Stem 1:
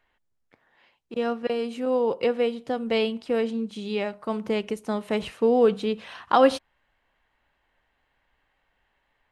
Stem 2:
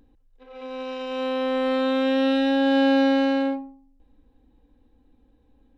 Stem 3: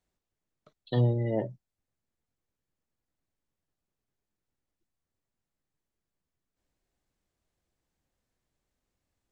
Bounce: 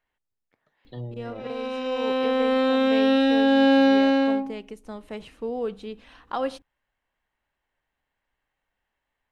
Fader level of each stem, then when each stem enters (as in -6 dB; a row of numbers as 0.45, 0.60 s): -10.0, +1.5, -11.0 dB; 0.00, 0.85, 0.00 s